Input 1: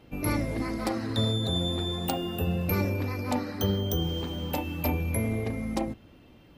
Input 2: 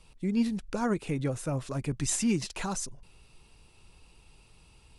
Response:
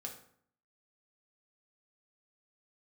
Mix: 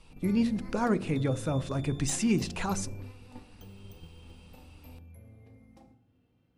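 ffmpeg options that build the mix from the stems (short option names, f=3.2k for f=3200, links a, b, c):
-filter_complex "[0:a]equalizer=f=110:t=o:w=2.3:g=6.5,acompressor=threshold=-36dB:ratio=2,volume=-12.5dB,asplit=2[a][b];[b]volume=-5.5dB[c];[1:a]highshelf=f=5.8k:g=-8,bandreject=f=47.83:t=h:w=4,bandreject=f=95.66:t=h:w=4,bandreject=f=143.49:t=h:w=4,bandreject=f=191.32:t=h:w=4,bandreject=f=239.15:t=h:w=4,bandreject=f=286.98:t=h:w=4,bandreject=f=334.81:t=h:w=4,bandreject=f=382.64:t=h:w=4,bandreject=f=430.47:t=h:w=4,bandreject=f=478.3:t=h:w=4,bandreject=f=526.13:t=h:w=4,bandreject=f=573.96:t=h:w=4,bandreject=f=621.79:t=h:w=4,bandreject=f=669.62:t=h:w=4,volume=1.5dB,asplit=3[d][e][f];[e]volume=-13.5dB[g];[f]apad=whole_len=290164[h];[a][h]sidechaingate=range=-33dB:threshold=-50dB:ratio=16:detection=peak[i];[2:a]atrim=start_sample=2205[j];[c][g]amix=inputs=2:normalize=0[k];[k][j]afir=irnorm=-1:irlink=0[l];[i][d][l]amix=inputs=3:normalize=0"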